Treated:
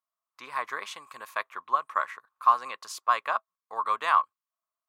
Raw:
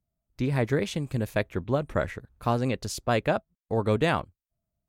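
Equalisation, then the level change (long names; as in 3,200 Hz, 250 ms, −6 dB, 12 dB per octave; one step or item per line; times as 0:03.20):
high-pass with resonance 1,100 Hz, resonance Q 12
−4.5 dB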